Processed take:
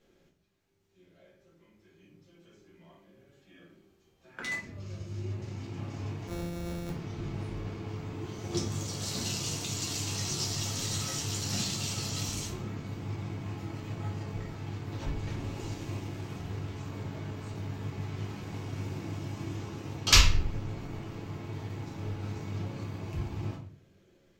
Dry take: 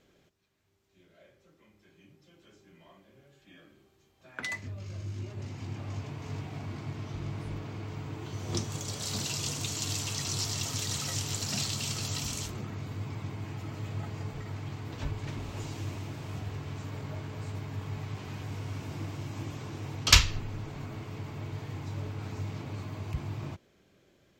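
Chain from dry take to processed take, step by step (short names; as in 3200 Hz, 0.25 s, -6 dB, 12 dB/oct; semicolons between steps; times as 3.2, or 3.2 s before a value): 6.27–6.9 sample sorter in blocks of 256 samples; shoebox room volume 37 m³, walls mixed, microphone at 0.89 m; in parallel at -11 dB: crossover distortion -35.5 dBFS; on the sum: gain -6.5 dB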